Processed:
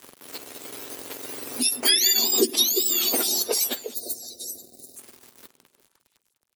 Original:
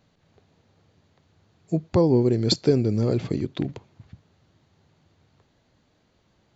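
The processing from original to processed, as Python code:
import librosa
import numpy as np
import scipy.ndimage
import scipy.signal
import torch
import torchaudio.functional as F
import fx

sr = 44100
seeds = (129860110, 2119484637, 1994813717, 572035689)

p1 = fx.octave_mirror(x, sr, pivot_hz=1300.0)
p2 = fx.doppler_pass(p1, sr, speed_mps=19, closest_m=15.0, pass_at_s=2.19)
p3 = fx.high_shelf(p2, sr, hz=5600.0, db=3.5)
p4 = fx.over_compress(p3, sr, threshold_db=-42.0, ratio=-0.5)
p5 = p3 + (p4 * librosa.db_to_amplitude(0.5))
p6 = np.sign(p5) * np.maximum(np.abs(p5) - 10.0 ** (-57.5 / 20.0), 0.0)
p7 = fx.echo_stepped(p6, sr, ms=174, hz=170.0, octaves=1.4, feedback_pct=70, wet_db=-8.5)
p8 = fx.spec_box(p7, sr, start_s=3.94, length_s=1.02, low_hz=770.0, high_hz=3600.0, gain_db=-25)
p9 = fx.band_squash(p8, sr, depth_pct=70)
y = p9 * librosa.db_to_amplitude(6.0)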